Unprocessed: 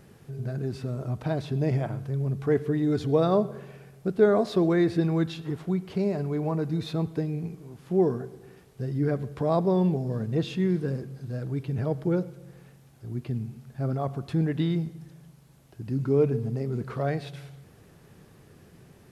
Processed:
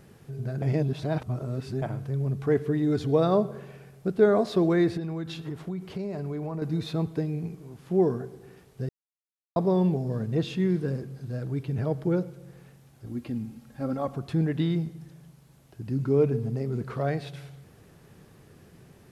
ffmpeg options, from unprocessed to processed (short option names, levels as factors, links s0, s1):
-filter_complex "[0:a]asettb=1/sr,asplit=3[s0][s1][s2];[s0]atrim=end=4.974[s3];[s1]atrim=start=4.97:end=6.62,asetpts=PTS-STARTPTS,afade=t=in:d=0.004:c=qsin,afade=t=out:st=1.646:d=0.004:c=qsin,acompressor=threshold=0.0355:ratio=6:attack=3.2:release=140:knee=1:detection=peak[s4];[s2]atrim=start=6.616[s5];[s3][s4]acrossfade=d=0.004:c1=hsin:c2=qsin[s6];[s6][s5]acrossfade=d=0.004:c1=qsin:c2=hsin,asettb=1/sr,asplit=3[s7][s8][s9];[s7]atrim=end=13.064[s10];[s8]atrim=start=13.06:end=14.16,asetpts=PTS-STARTPTS,afade=t=in:d=0.004:c=qsin,afade=t=out:st=1.096:d=0.004:c=qsin,aecho=1:1:3.7:0.65,atrim=end_sample=48510[s11];[s9]atrim=start=14.156[s12];[s10][s11]acrossfade=d=0.004:c1=hsin:c2=qsin[s13];[s13][s12]acrossfade=d=0.004:c1=qsin:c2=hsin,asplit=5[s14][s15][s16][s17][s18];[s14]atrim=end=0.622[s19];[s15]atrim=start=0.618:end=1.822,asetpts=PTS-STARTPTS,areverse[s20];[s16]atrim=start=1.818:end=8.89,asetpts=PTS-STARTPTS,afade=t=out:st=7.068:d=0.004:c=hsin[s21];[s17]atrim=start=8.89:end=9.56,asetpts=PTS-STARTPTS,volume=0[s22];[s18]atrim=start=9.56,asetpts=PTS-STARTPTS,afade=t=in:d=0.004:c=hsin[s23];[s19][s20]acrossfade=d=0.004:c1=hsin:c2=hsin[s24];[s21][s22][s23]concat=n=3:v=0:a=1[s25];[s24][s25]acrossfade=d=0.004:c1=hsin:c2=hsin"